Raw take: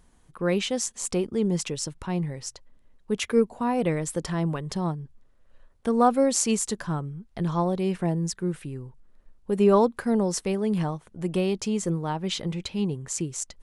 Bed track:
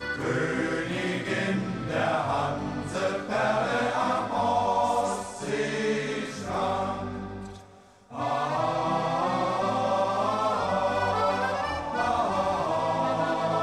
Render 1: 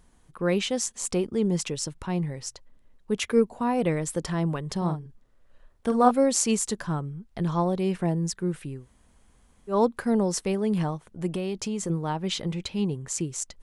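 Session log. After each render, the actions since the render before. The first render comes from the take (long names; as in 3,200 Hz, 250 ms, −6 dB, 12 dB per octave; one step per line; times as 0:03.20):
0:04.77–0:06.11: double-tracking delay 45 ms −7.5 dB
0:08.80–0:09.75: fill with room tone, crossfade 0.16 s
0:11.33–0:11.90: downward compressor 4 to 1, threshold −26 dBFS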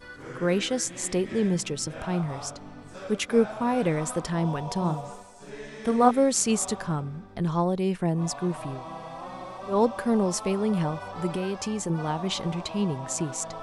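mix in bed track −12.5 dB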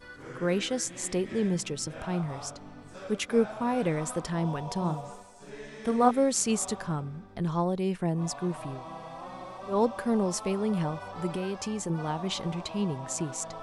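level −3 dB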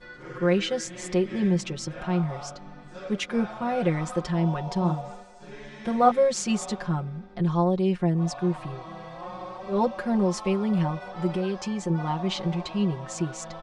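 low-pass filter 5,300 Hz 12 dB per octave
comb filter 5.6 ms, depth 95%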